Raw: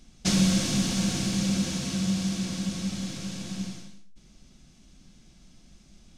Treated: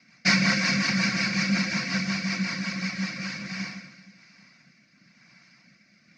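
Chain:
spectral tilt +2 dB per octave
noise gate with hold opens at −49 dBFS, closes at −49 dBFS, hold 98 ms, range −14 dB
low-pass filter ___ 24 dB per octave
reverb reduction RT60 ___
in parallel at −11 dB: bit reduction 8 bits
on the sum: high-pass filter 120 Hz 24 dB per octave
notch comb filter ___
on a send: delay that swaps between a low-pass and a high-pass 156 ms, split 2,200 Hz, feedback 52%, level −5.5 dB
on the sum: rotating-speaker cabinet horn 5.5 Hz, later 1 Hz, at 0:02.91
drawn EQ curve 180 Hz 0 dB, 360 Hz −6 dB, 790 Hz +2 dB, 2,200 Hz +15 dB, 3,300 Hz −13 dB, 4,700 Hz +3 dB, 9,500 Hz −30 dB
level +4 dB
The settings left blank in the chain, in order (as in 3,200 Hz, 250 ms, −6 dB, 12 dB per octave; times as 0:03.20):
10,000 Hz, 0.53 s, 420 Hz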